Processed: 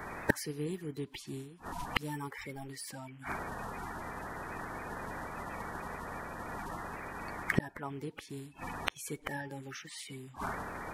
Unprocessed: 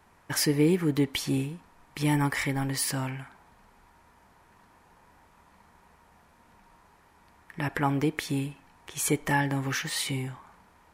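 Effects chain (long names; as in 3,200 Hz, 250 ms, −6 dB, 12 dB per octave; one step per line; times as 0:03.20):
spectral magnitudes quantised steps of 30 dB
gate with flip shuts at −30 dBFS, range −32 dB
level +18 dB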